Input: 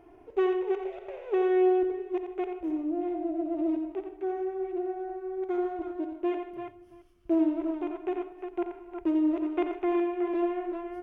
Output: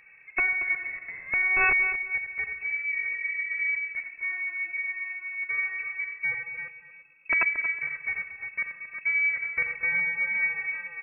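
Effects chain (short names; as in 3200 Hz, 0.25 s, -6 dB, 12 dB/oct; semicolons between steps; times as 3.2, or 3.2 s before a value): wrapped overs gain 17.5 dB; inverted band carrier 2600 Hz; darkening echo 0.229 s, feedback 28%, low-pass 2000 Hz, level -11 dB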